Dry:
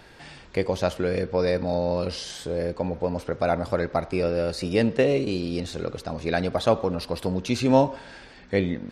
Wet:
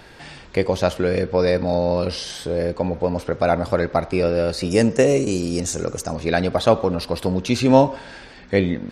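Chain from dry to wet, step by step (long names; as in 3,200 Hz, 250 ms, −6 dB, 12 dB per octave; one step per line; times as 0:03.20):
0:01.84–0:02.58: notch filter 7,000 Hz, Q 8.1
0:04.70–0:06.15: high shelf with overshoot 5,100 Hz +9 dB, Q 3
level +5 dB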